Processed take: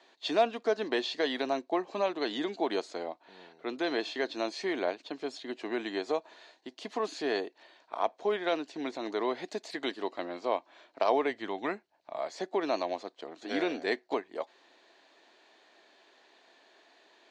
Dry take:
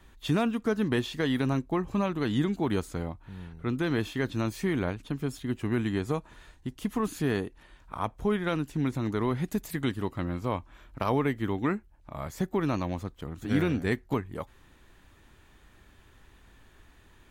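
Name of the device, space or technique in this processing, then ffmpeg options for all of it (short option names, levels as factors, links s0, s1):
phone speaker on a table: -filter_complex "[0:a]asplit=3[s0][s1][s2];[s0]afade=t=out:st=11.29:d=0.02[s3];[s1]asubboost=boost=5:cutoff=130,afade=t=in:st=11.29:d=0.02,afade=t=out:st=12.16:d=0.02[s4];[s2]afade=t=in:st=12.16:d=0.02[s5];[s3][s4][s5]amix=inputs=3:normalize=0,highpass=f=340:w=0.5412,highpass=f=340:w=1.3066,equalizer=f=670:t=q:w=4:g=9,equalizer=f=1300:t=q:w=4:g=-6,equalizer=f=4300:t=q:w=4:g=9,lowpass=f=6400:w=0.5412,lowpass=f=6400:w=1.3066"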